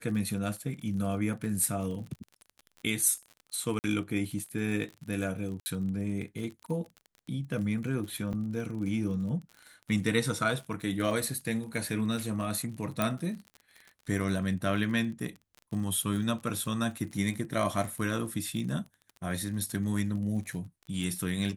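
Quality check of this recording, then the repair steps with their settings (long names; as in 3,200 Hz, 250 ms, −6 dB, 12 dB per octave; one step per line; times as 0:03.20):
surface crackle 43 per second −38 dBFS
0:03.79–0:03.84: drop-out 49 ms
0:05.60–0:05.66: drop-out 60 ms
0:08.33: drop-out 4.7 ms
0:13.02: click −13 dBFS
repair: click removal
repair the gap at 0:03.79, 49 ms
repair the gap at 0:05.60, 60 ms
repair the gap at 0:08.33, 4.7 ms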